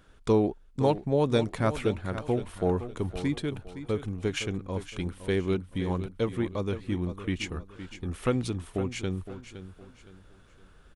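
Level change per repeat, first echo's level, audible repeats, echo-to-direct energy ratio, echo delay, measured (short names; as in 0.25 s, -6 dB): -9.5 dB, -12.0 dB, 3, -11.5 dB, 0.514 s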